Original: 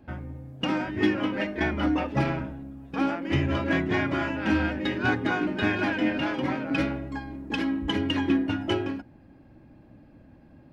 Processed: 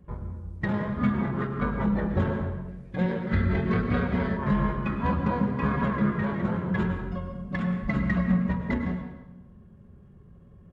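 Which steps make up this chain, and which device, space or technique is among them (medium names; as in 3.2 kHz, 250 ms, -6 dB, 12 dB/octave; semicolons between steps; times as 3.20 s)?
monster voice (pitch shift -7 st; bass shelf 240 Hz +4 dB; reverberation RT60 0.95 s, pre-delay 93 ms, DRR 5.5 dB); 2.68–4.37 s: graphic EQ 500/1000/2000/4000 Hz +4/-7/+5/+5 dB; trim -2.5 dB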